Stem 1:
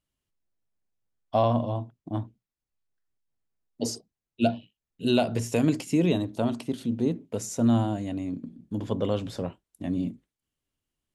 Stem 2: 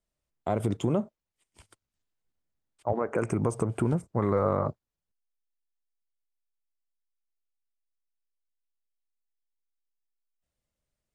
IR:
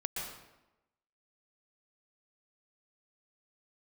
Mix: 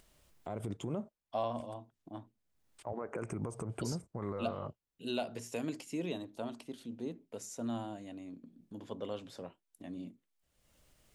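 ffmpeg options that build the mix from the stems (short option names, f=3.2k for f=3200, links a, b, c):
-filter_complex "[0:a]highpass=f=360:p=1,volume=-10.5dB[a];[1:a]alimiter=limit=-22.5dB:level=0:latency=1:release=119,volume=-6dB[b];[a][b]amix=inputs=2:normalize=0,acompressor=mode=upward:threshold=-47dB:ratio=2.5"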